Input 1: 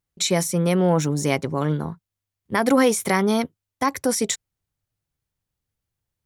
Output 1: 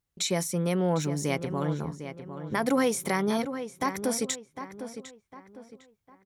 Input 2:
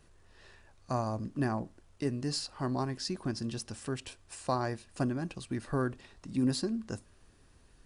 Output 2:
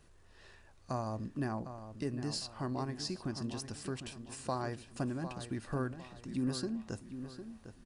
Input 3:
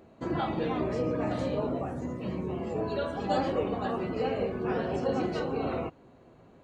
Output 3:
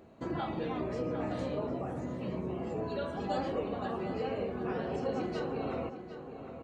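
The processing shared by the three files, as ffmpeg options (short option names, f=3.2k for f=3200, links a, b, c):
-filter_complex "[0:a]asplit=2[a][b];[b]acompressor=threshold=-36dB:ratio=6,volume=2.5dB[c];[a][c]amix=inputs=2:normalize=0,asplit=2[d][e];[e]adelay=754,lowpass=f=3.1k:p=1,volume=-10dB,asplit=2[f][g];[g]adelay=754,lowpass=f=3.1k:p=1,volume=0.38,asplit=2[h][i];[i]adelay=754,lowpass=f=3.1k:p=1,volume=0.38,asplit=2[j][k];[k]adelay=754,lowpass=f=3.1k:p=1,volume=0.38[l];[d][f][h][j][l]amix=inputs=5:normalize=0,volume=-8.5dB"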